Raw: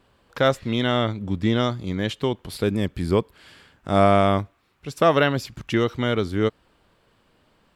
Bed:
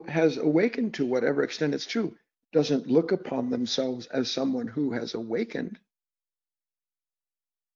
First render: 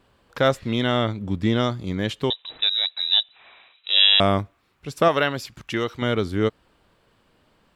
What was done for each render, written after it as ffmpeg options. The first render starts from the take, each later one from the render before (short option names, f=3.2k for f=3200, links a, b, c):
-filter_complex "[0:a]asettb=1/sr,asplit=3[a][b][c];[a]atrim=end=2.304[d];[b]atrim=start=2.3:end=4.2,asetpts=PTS-STARTPTS,afade=t=in:d=0.004:c=qsin,afade=t=out:st=1.896:d=0.004:c=qsin,lowpass=f=3.4k:t=q:w=0.5098,lowpass=f=3.4k:t=q:w=0.6013,lowpass=f=3.4k:t=q:w=0.9,lowpass=f=3.4k:t=q:w=2.563,afreqshift=-4000[e];[c]atrim=start=4.196[f];[d][e]acrossfade=d=0.004:c1=hsin:c2=qsin[g];[g][f]acrossfade=d=0.004:c1=qsin:c2=hsin,asettb=1/sr,asplit=3[h][i][j];[h]atrim=end=5.084[k];[i]atrim=start=5.08:end=6.02,asetpts=PTS-STARTPTS,afade=t=in:d=0.004:c=qsin,afade=t=out:st=0.936:d=0.004:c=qsin,lowshelf=f=440:g=-7.5[l];[j]atrim=start=6.016[m];[k][l]acrossfade=d=0.004:c1=hsin:c2=qsin[n];[n][m]acrossfade=d=0.004:c1=qsin:c2=hsin"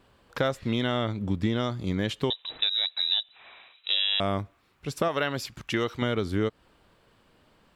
-af "alimiter=limit=-8.5dB:level=0:latency=1:release=410,acompressor=threshold=-22dB:ratio=6"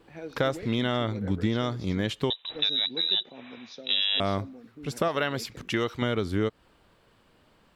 -filter_complex "[1:a]volume=-17.5dB[a];[0:a][a]amix=inputs=2:normalize=0"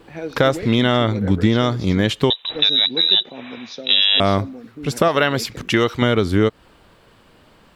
-af "volume=10.5dB,alimiter=limit=-2dB:level=0:latency=1"